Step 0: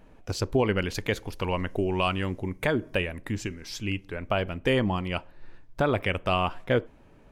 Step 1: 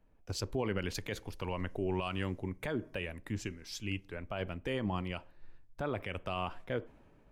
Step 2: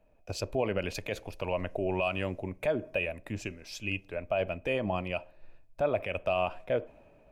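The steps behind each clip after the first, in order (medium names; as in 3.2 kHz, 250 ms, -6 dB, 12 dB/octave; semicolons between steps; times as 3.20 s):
reverse; upward compressor, threshold -43 dBFS; reverse; peak limiter -20 dBFS, peak gain reduction 8 dB; three bands expanded up and down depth 40%; trim -6 dB
small resonant body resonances 620/2500 Hz, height 14 dB, ringing for 20 ms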